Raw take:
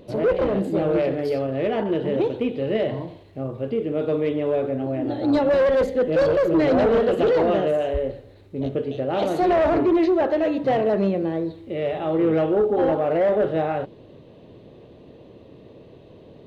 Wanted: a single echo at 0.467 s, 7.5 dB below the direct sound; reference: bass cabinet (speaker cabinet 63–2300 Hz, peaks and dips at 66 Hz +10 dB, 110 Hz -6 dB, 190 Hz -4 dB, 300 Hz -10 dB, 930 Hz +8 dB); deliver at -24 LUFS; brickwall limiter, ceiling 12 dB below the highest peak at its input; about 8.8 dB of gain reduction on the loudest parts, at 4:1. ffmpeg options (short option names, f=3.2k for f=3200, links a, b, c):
-af "acompressor=threshold=-27dB:ratio=4,alimiter=level_in=5.5dB:limit=-24dB:level=0:latency=1,volume=-5.5dB,highpass=f=63:w=0.5412,highpass=f=63:w=1.3066,equalizer=f=66:t=q:w=4:g=10,equalizer=f=110:t=q:w=4:g=-6,equalizer=f=190:t=q:w=4:g=-4,equalizer=f=300:t=q:w=4:g=-10,equalizer=f=930:t=q:w=4:g=8,lowpass=f=2.3k:w=0.5412,lowpass=f=2.3k:w=1.3066,aecho=1:1:467:0.422,volume=12.5dB"